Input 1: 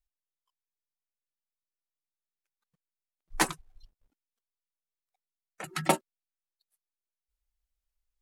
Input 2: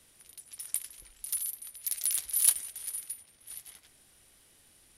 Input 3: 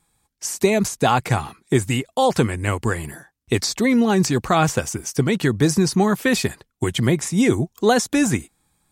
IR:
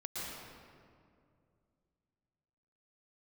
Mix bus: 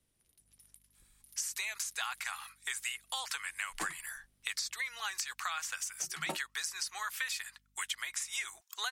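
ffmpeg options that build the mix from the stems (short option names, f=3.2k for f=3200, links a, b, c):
-filter_complex "[0:a]aeval=exprs='val(0)+0.00126*(sin(2*PI*50*n/s)+sin(2*PI*2*50*n/s)/2+sin(2*PI*3*50*n/s)/3+sin(2*PI*4*50*n/s)/4+sin(2*PI*5*50*n/s)/5)':c=same,adelay=400,volume=-15dB[a];[1:a]lowshelf=f=380:g=11,acompressor=threshold=-38dB:ratio=6,volume=-18.5dB[b];[2:a]highpass=f=1.3k:w=0.5412,highpass=f=1.3k:w=1.3066,acompressor=threshold=-34dB:ratio=6,adelay=950,volume=-0.5dB[c];[a][b][c]amix=inputs=3:normalize=0"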